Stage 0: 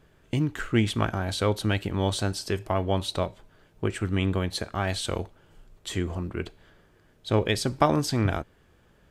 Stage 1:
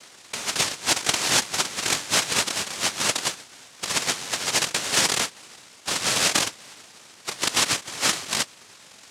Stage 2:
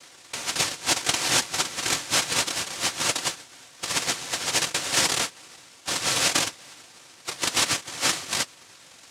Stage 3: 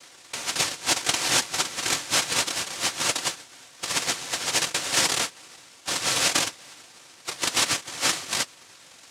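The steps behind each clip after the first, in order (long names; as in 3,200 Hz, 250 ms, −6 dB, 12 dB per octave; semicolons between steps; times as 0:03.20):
low-pass that shuts in the quiet parts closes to 1,900 Hz, open at −23 dBFS; compressor whose output falls as the input rises −31 dBFS, ratio −0.5; cochlear-implant simulation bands 1; level +8 dB
notch comb filter 210 Hz
low-shelf EQ 180 Hz −3 dB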